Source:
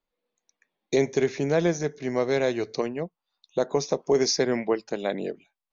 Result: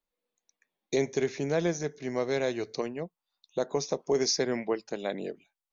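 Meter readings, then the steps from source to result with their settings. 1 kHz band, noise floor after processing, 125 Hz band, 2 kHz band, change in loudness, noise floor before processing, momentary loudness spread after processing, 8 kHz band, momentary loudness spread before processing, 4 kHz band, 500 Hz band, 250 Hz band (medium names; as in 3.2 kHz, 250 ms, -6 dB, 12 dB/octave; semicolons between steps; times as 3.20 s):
-5.0 dB, under -85 dBFS, -5.0 dB, -4.5 dB, -4.5 dB, under -85 dBFS, 11 LU, no reading, 10 LU, -2.5 dB, -5.0 dB, -5.0 dB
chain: treble shelf 4.6 kHz +4.5 dB; trim -5 dB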